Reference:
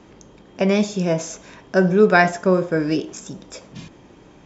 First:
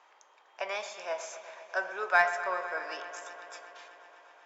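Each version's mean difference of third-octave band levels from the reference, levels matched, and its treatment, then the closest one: 10.0 dB: HPF 820 Hz 24 dB/oct; high shelf 2200 Hz -12 dB; in parallel at -10 dB: soft clip -24 dBFS, distortion -5 dB; on the sum: dark delay 0.124 s, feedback 83%, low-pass 3800 Hz, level -13 dB; gain -4 dB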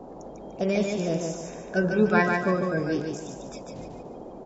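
6.0 dB: bin magnitudes rounded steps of 30 dB; low shelf 81 Hz +9.5 dB; band noise 150–740 Hz -35 dBFS; on a send: feedback echo 0.147 s, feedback 38%, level -4 dB; on the sum: gain -8 dB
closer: second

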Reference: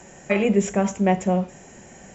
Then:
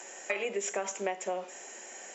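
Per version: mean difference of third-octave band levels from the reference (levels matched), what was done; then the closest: 9.5 dB: HPF 350 Hz 24 dB/oct; tilt shelf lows -4 dB, about 1200 Hz; compressor 10:1, threshold -29 dBFS, peak gain reduction 12.5 dB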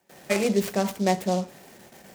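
6.0 dB: gate with hold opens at -35 dBFS; HPF 200 Hz 6 dB/oct; noise-modulated delay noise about 4800 Hz, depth 0.045 ms; gain -2 dB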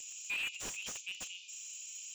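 17.5 dB: limiter -15 dBFS, peak gain reduction 7.5 dB; steep high-pass 2500 Hz 96 dB/oct; slew limiter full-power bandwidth 27 Hz; gain +6 dB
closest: second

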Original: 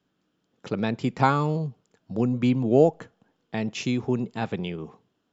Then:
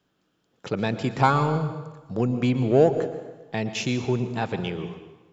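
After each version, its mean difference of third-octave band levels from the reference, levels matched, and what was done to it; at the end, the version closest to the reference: 5.0 dB: bell 230 Hz -5 dB 0.98 oct; in parallel at -5 dB: soft clip -23.5 dBFS, distortion -6 dB; on the sum: plate-style reverb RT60 1.2 s, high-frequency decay 0.85×, pre-delay 0.105 s, DRR 10 dB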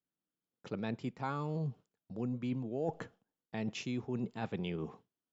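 3.0 dB: gate with hold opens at -42 dBFS; high shelf 6300 Hz -4 dB; reverse; compressor 6:1, threshold -32 dBFS, peak gain reduction 18.5 dB; reverse; gain -2 dB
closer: second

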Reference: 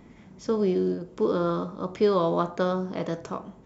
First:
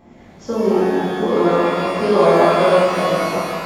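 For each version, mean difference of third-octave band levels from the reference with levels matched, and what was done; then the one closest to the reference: 9.0 dB: bell 680 Hz +7 dB 0.73 oct; shimmer reverb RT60 2.2 s, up +12 st, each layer -8 dB, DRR -10 dB; gain -2.5 dB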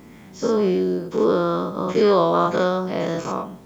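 4.0 dB: spectral dilation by 0.12 s; bit-crush 10-bit; low shelf 110 Hz -5.5 dB; gain +2.5 dB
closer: second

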